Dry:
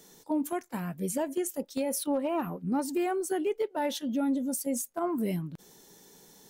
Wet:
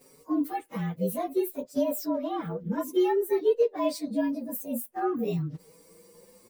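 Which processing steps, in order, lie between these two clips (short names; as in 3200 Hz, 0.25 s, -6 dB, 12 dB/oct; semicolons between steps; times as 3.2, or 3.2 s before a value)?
inharmonic rescaling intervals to 111%; bell 490 Hz +11.5 dB 0.25 oct; 2.05–2.58 compressor, threshold -30 dBFS, peak gain reduction 5.5 dB; 4.77–5.24 notch 3900 Hz, Q 7.3; endless flanger 5 ms +0.59 Hz; gain +5.5 dB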